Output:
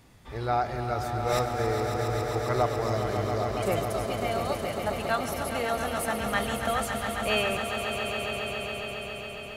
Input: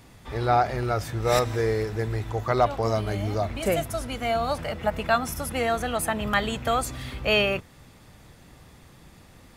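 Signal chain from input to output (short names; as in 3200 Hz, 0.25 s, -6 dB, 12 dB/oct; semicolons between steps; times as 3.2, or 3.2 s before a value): swelling echo 0.137 s, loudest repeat 5, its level -9 dB; gain -5.5 dB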